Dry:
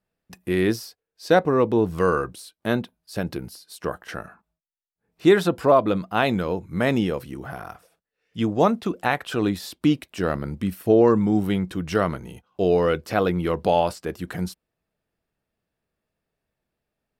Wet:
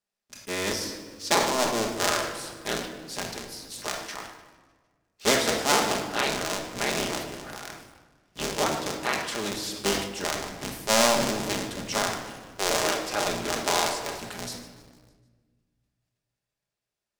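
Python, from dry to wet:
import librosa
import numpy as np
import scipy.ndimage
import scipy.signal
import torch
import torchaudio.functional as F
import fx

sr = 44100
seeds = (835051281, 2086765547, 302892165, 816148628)

p1 = fx.cycle_switch(x, sr, every=3, mode='inverted')
p2 = fx.peak_eq(p1, sr, hz=6300.0, db=12.0, octaves=1.8)
p3 = p2 + fx.echo_feedback(p2, sr, ms=151, feedback_pct=55, wet_db=-18.5, dry=0)
p4 = fx.room_shoebox(p3, sr, seeds[0], volume_m3=1600.0, walls='mixed', distance_m=1.3)
p5 = fx.quant_dither(p4, sr, seeds[1], bits=6, dither='none')
p6 = p4 + F.gain(torch.from_numpy(p5), -11.5).numpy()
p7 = fx.low_shelf(p6, sr, hz=250.0, db=-11.5)
p8 = fx.sustainer(p7, sr, db_per_s=66.0)
y = F.gain(torch.from_numpy(p8), -9.5).numpy()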